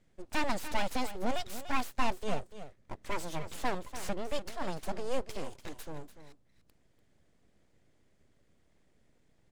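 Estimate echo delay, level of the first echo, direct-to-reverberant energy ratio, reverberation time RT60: 0.292 s, -12.5 dB, none, none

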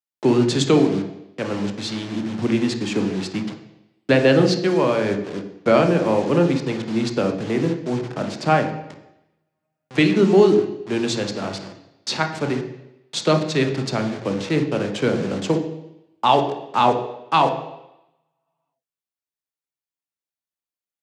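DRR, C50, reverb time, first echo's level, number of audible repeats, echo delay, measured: 5.0 dB, 9.0 dB, 0.90 s, none, none, none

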